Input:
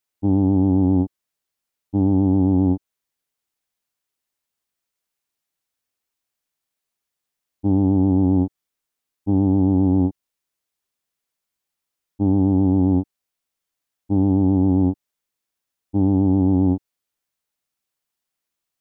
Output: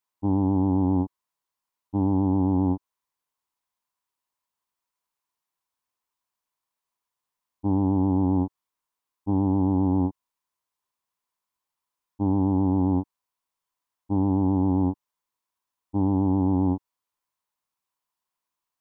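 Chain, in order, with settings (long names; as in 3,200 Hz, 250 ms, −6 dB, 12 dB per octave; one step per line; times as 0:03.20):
parametric band 1,000 Hz +15 dB 0.45 octaves
level −5.5 dB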